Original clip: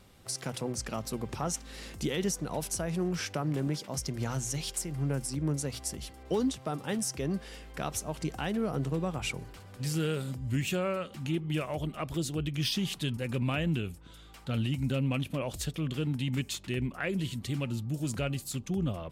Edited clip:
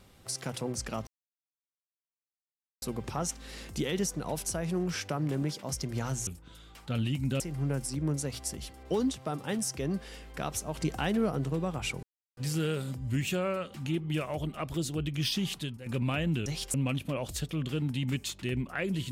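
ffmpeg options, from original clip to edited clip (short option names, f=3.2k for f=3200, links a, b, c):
-filter_complex "[0:a]asplit=11[a][b][c][d][e][f][g][h][i][j][k];[a]atrim=end=1.07,asetpts=PTS-STARTPTS,afade=t=out:st=1.066:d=0.004:c=hsin,apad=pad_dur=1.75[l];[b]atrim=start=1.07:end=4.522,asetpts=PTS-STARTPTS,afade=t=in:d=0.004:c=hsin[m];[c]atrim=start=13.858:end=14.992[n];[d]atrim=start=4.798:end=8.152[o];[e]atrim=start=8.148:end=8.702,asetpts=PTS-STARTPTS,volume=3dB[p];[f]atrim=start=8.698:end=9.43,asetpts=PTS-STARTPTS,afade=t=out:st=0.728:d=0.004:c=hsin[q];[g]atrim=start=9.43:end=9.77,asetpts=PTS-STARTPTS,volume=0[r];[h]atrim=start=9.77:end=13.26,asetpts=PTS-STARTPTS,afade=t=in:d=0.004:c=hsin,afade=t=out:st=3.2:d=0.29:c=qua:silence=0.281838[s];[i]atrim=start=13.26:end=13.862,asetpts=PTS-STARTPTS,afade=t=in:d=0.004:c=hsin:silence=0.281838[t];[j]atrim=start=4.518:end=4.802[u];[k]atrim=start=14.988[v];[l][m]concat=n=2:v=0:a=1[w];[w][n]acrossfade=d=0.004:c1=hsin:c2=hsin[x];[x][o]acrossfade=d=0.004:c1=hsin:c2=hsin[y];[y][p]acrossfade=d=0.004:c1=hsin:c2=hsin[z];[q][r][s][t]concat=n=4:v=0:a=1[aa];[z][aa]acrossfade=d=0.004:c1=hsin:c2=hsin[ab];[ab][u]acrossfade=d=0.004:c1=hsin:c2=hsin[ac];[ac][v]acrossfade=d=0.004:c1=hsin:c2=hsin"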